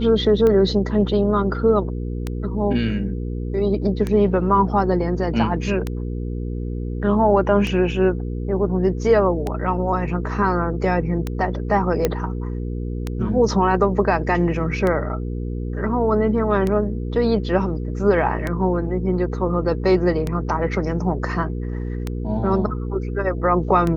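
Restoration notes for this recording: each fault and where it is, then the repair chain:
hum 60 Hz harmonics 8 -26 dBFS
tick 33 1/3 rpm -11 dBFS
12.05 pop -5 dBFS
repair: de-click; de-hum 60 Hz, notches 8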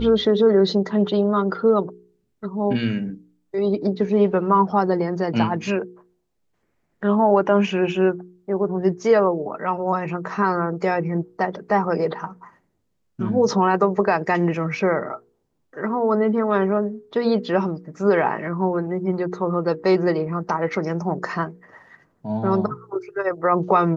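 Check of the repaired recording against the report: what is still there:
none

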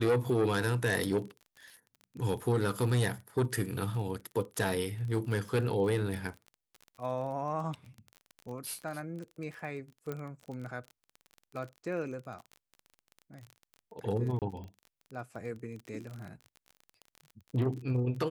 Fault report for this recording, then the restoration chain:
crackle 25/s -39 dBFS
10.12 pop -24 dBFS
14.39–14.42 gap 28 ms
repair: de-click; interpolate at 14.39, 28 ms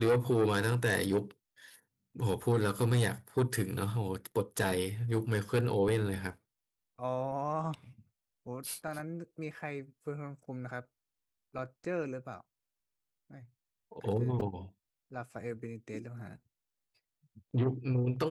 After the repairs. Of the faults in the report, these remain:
none

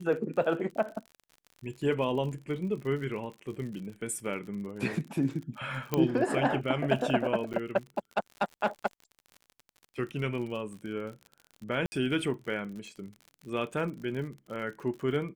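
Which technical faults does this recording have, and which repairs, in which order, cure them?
crackle 56/s -39 dBFS
5.94 pop -13 dBFS
7.53–7.54 gap 8.4 ms
11.86–11.92 gap 60 ms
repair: de-click; interpolate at 7.53, 8.4 ms; interpolate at 11.86, 60 ms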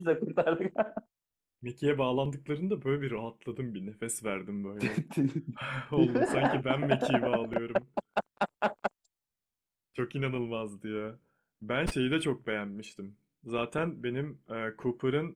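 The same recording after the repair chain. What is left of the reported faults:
5.94 pop

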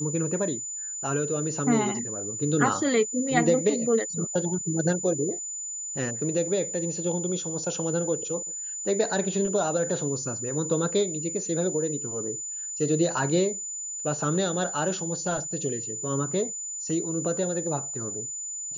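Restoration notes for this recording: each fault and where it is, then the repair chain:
tone 7000 Hz -32 dBFS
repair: notch 7000 Hz, Q 30

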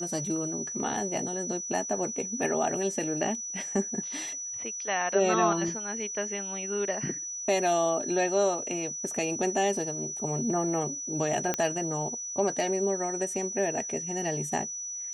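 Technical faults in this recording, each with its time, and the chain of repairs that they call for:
tone 5900 Hz -34 dBFS
11.54 pop -12 dBFS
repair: de-click; notch 5900 Hz, Q 30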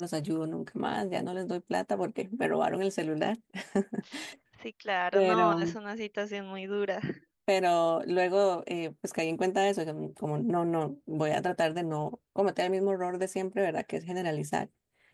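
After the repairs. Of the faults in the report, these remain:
none

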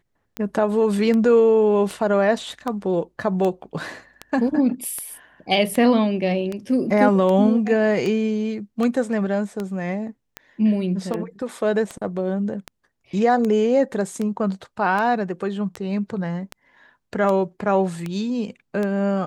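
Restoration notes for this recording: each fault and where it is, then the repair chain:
tick 78 rpm -14 dBFS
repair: de-click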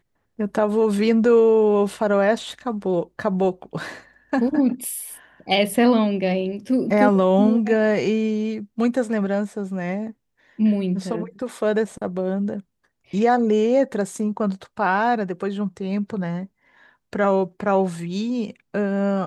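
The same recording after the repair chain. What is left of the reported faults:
none

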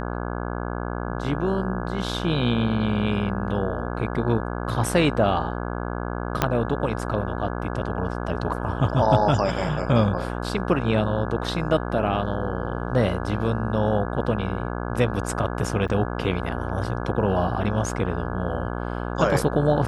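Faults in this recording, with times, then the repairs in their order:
buzz 60 Hz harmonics 28 -29 dBFS
6.42 pop -4 dBFS
15.88–15.89 gap 6.7 ms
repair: de-click; de-hum 60 Hz, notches 28; interpolate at 15.88, 6.7 ms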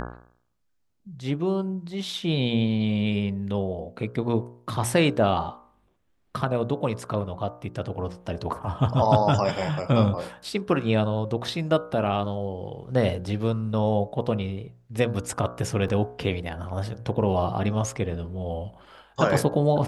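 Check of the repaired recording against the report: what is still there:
6.42 pop

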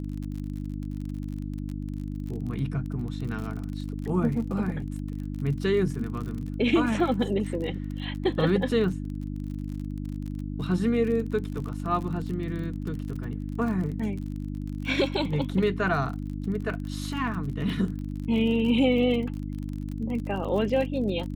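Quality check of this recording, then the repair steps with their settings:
crackle 41/s -34 dBFS
hum 50 Hz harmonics 6 -33 dBFS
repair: de-click; de-hum 50 Hz, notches 6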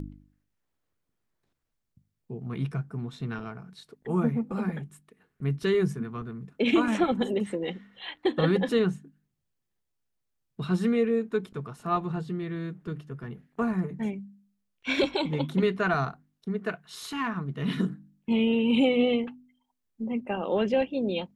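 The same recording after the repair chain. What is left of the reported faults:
none

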